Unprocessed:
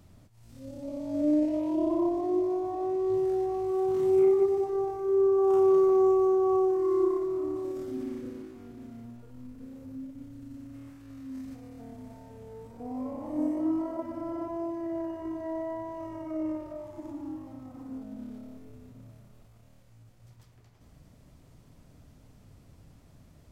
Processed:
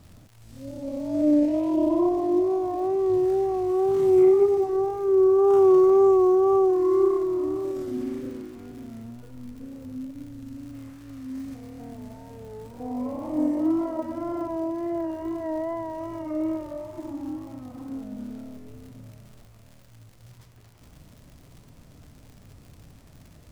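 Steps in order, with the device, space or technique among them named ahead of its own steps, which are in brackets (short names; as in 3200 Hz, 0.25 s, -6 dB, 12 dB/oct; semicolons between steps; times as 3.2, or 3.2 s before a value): vinyl LP (wow and flutter; crackle 130/s -47 dBFS; pink noise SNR 44 dB); gain +5 dB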